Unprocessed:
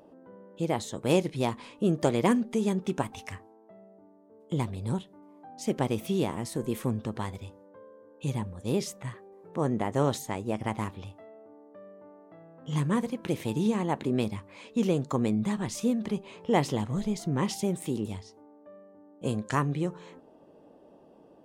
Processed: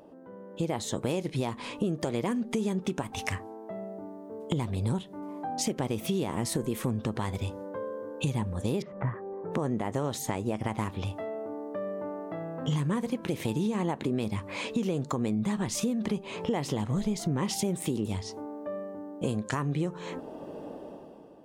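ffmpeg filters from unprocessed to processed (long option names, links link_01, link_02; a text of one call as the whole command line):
ffmpeg -i in.wav -filter_complex "[0:a]asettb=1/sr,asplit=3[link_01][link_02][link_03];[link_01]atrim=end=8.824[link_04];[link_02]atrim=start=8.82:end=9.52,asetpts=PTS-STARTPTS,afade=type=in:duration=0.004:curve=qsin,afade=type=out:start_time=0.696:duration=0.004:curve=qsin,lowpass=frequency=1700:width=0.5412,lowpass=frequency=1700:width=1.3066[link_05];[link_03]atrim=start=9.516[link_06];[link_04][link_05]acrossfade=duration=0.004:curve1=hsin:curve2=qsin[link_07];[link_07][link_06]acrossfade=duration=0.004:curve1=qsin:curve2=hsin,dynaudnorm=framelen=150:gausssize=9:maxgain=13dB,alimiter=limit=-12.5dB:level=0:latency=1:release=274,acompressor=threshold=-32dB:ratio=3,volume=2.5dB" out.wav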